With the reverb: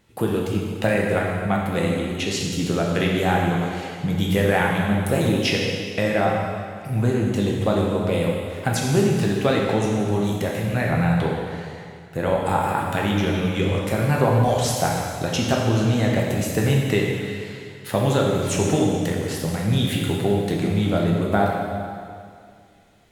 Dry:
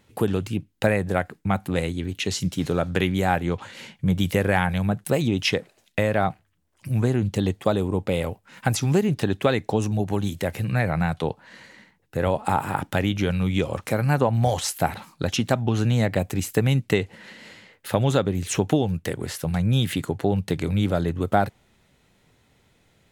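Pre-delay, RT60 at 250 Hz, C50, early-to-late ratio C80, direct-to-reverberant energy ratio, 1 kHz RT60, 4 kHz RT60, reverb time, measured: 4 ms, 2.3 s, 0.5 dB, 2.0 dB, -2.5 dB, 2.2 s, 2.0 s, 2.2 s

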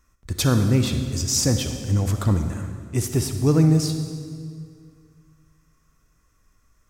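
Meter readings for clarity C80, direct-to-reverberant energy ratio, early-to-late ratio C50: 8.0 dB, 6.5 dB, 7.0 dB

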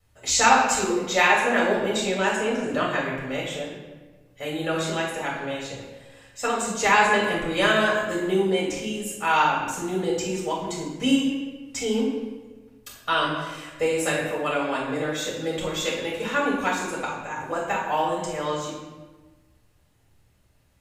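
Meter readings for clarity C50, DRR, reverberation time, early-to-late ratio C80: 2.5 dB, -4.5 dB, 1.3 s, 4.5 dB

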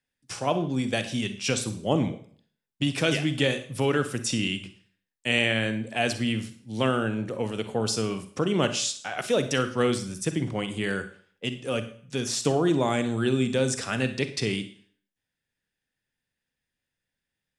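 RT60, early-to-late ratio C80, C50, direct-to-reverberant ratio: 0.50 s, 16.0 dB, 12.0 dB, 9.5 dB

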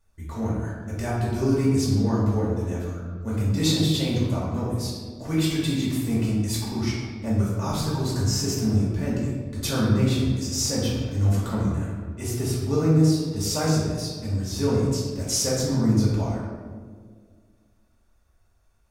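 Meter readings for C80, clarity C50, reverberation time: 2.5 dB, 0.0 dB, 1.8 s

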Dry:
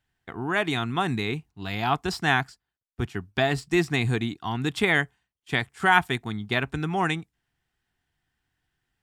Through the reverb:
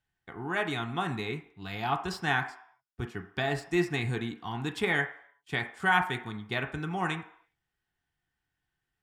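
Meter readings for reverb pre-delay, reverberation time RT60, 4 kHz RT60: 3 ms, 0.60 s, 0.60 s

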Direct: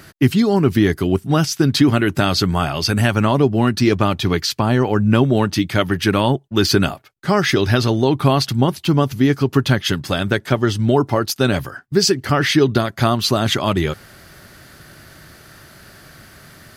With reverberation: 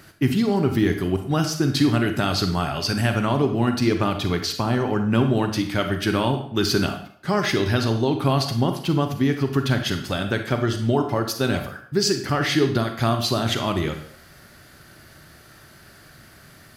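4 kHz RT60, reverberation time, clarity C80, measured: 0.55 s, 0.60 s, 11.5 dB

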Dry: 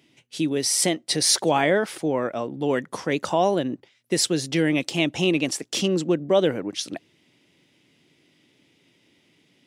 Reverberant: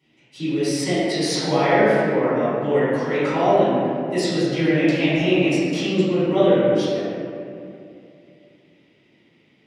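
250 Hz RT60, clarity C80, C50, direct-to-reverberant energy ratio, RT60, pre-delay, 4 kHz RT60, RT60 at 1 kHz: 3.1 s, -2.5 dB, -5.0 dB, -17.0 dB, 2.6 s, 3 ms, 1.6 s, 2.4 s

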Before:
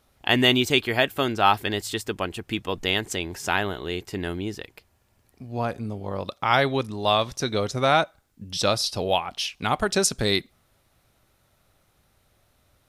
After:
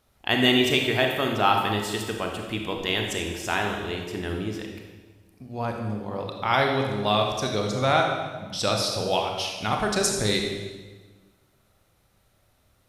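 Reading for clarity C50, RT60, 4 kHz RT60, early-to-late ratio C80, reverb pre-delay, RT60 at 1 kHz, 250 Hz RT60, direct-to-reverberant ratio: 3.0 dB, 1.4 s, 1.2 s, 5.0 dB, 27 ms, 1.3 s, 1.7 s, 1.5 dB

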